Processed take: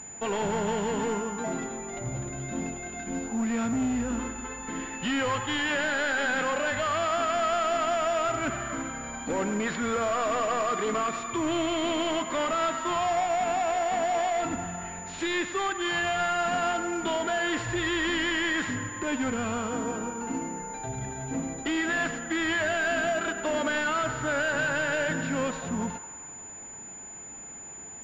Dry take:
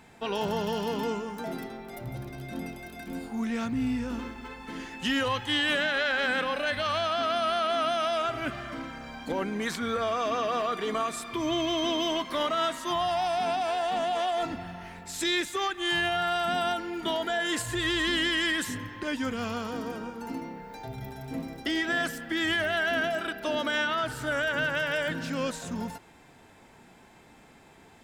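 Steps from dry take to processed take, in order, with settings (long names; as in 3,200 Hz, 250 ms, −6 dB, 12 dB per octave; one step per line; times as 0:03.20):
gain into a clipping stage and back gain 28 dB
feedback echo with a band-pass in the loop 97 ms, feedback 74%, band-pass 1,200 Hz, level −10 dB
switching amplifier with a slow clock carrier 7,000 Hz
level +3.5 dB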